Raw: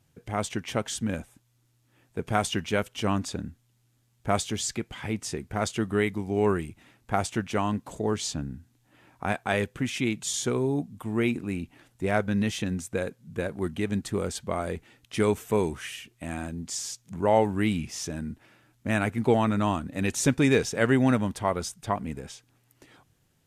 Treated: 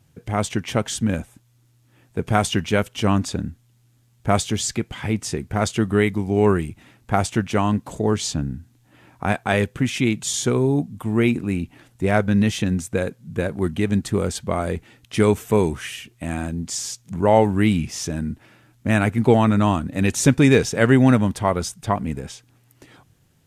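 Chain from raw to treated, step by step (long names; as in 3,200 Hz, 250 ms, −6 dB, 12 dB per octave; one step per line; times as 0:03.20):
parametric band 110 Hz +4 dB 2.3 octaves
level +5.5 dB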